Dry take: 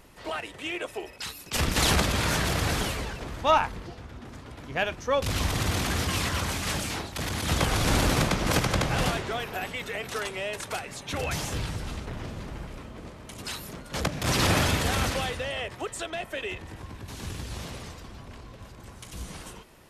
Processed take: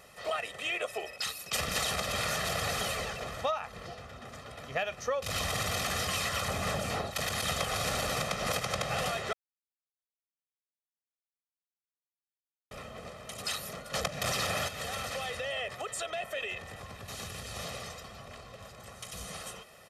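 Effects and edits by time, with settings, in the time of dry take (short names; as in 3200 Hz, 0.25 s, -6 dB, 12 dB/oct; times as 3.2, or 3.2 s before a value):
6.48–7.11 tilt shelf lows +6.5 dB, about 1500 Hz
9.33–12.71 mute
14.68–17.56 compressor, threshold -33 dBFS
whole clip: HPF 300 Hz 6 dB/oct; comb 1.6 ms, depth 73%; compressor 16:1, threshold -28 dBFS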